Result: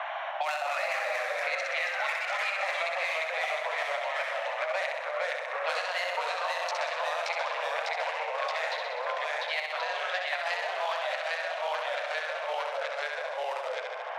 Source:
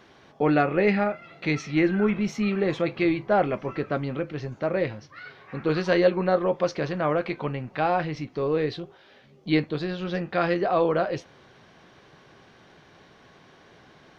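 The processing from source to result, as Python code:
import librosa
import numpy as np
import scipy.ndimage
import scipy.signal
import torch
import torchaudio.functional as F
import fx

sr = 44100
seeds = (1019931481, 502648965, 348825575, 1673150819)

y = fx.wiener(x, sr, points=9)
y = fx.env_lowpass(y, sr, base_hz=1500.0, full_db=-18.0)
y = scipy.signal.sosfilt(scipy.signal.butter(16, 620.0, 'highpass', fs=sr, output='sos'), y)
y = fx.peak_eq(y, sr, hz=1400.0, db=-6.5, octaves=1.1)
y = fx.over_compress(y, sr, threshold_db=-36.0, ratio=-1.0)
y = fx.room_flutter(y, sr, wall_m=10.6, rt60_s=0.83)
y = fx.echo_pitch(y, sr, ms=178, semitones=-1, count=3, db_per_echo=-3.0)
y = fx.band_squash(y, sr, depth_pct=100)
y = y * librosa.db_to_amplitude(2.0)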